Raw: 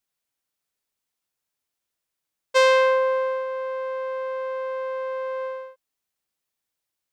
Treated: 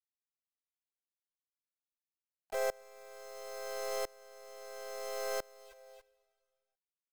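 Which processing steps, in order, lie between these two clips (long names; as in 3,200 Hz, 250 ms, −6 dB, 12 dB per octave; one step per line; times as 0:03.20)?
stylus tracing distortion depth 0.024 ms
gate on every frequency bin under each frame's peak −15 dB strong
Butterworth low-pass 960 Hz 48 dB per octave
downward compressor 6 to 1, threshold −33 dBFS, peak gain reduction 15.5 dB
leveller curve on the samples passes 1
brickwall limiter −32 dBFS, peak gain reduction 8 dB
wave folding −34 dBFS
bit reduction 7 bits
pitch-shifted copies added −4 semitones −8 dB, +4 semitones −4 dB, +7 semitones −9 dB
single-tap delay 280 ms −8.5 dB
convolution reverb RT60 1.4 s, pre-delay 43 ms, DRR 20 dB
tremolo with a ramp in dB swelling 0.74 Hz, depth 26 dB
level +3.5 dB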